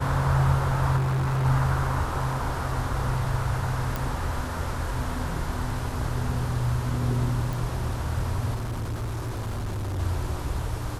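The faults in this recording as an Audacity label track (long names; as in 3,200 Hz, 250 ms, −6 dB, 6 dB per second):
0.960000	1.460000	clipping −22 dBFS
3.960000	3.960000	click
7.530000	7.530000	click
8.540000	10.000000	clipping −27 dBFS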